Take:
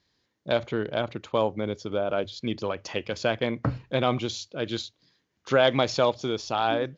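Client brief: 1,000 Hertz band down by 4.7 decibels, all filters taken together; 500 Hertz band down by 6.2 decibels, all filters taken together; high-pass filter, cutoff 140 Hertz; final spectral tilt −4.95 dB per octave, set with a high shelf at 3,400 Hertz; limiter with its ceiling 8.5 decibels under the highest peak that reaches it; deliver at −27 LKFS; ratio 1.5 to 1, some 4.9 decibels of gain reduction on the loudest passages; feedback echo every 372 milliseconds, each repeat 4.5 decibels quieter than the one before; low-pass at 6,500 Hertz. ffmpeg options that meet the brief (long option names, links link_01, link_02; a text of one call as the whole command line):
ffmpeg -i in.wav -af "highpass=140,lowpass=6500,equalizer=frequency=500:width_type=o:gain=-6.5,equalizer=frequency=1000:width_type=o:gain=-3.5,highshelf=frequency=3400:gain=-4.5,acompressor=threshold=-34dB:ratio=1.5,alimiter=level_in=1dB:limit=-24dB:level=0:latency=1,volume=-1dB,aecho=1:1:372|744|1116|1488|1860|2232|2604|2976|3348:0.596|0.357|0.214|0.129|0.0772|0.0463|0.0278|0.0167|0.01,volume=10dB" out.wav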